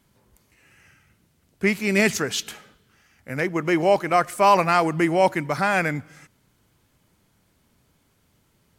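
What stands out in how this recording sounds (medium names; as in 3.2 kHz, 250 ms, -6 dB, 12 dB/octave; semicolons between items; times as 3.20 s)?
noise floor -65 dBFS; spectral tilt -4.5 dB/octave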